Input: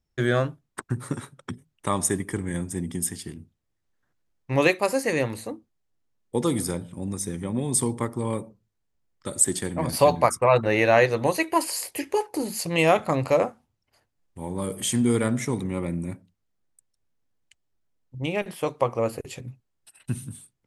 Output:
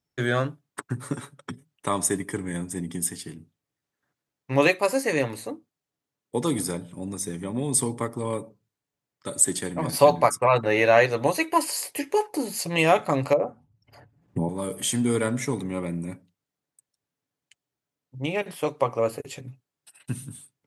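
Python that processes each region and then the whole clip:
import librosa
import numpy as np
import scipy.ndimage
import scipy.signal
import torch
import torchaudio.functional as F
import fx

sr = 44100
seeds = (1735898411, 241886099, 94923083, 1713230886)

y = fx.chain(x, sr, fx.envelope_sharpen(power=1.5),
    fx.peak_eq(hz=86.0, db=11.5, octaves=2.5),
    fx.band_squash(depth_pct=100), at=(13.33, 14.49))
y = scipy.signal.sosfilt(scipy.signal.butter(2, 74.0, 'highpass', fs=sr, output='sos'), y)
y = fx.low_shelf(y, sr, hz=94.0, db=-9.5)
y = y + 0.32 * np.pad(y, (int(7.0 * sr / 1000.0), 0))[:len(y)]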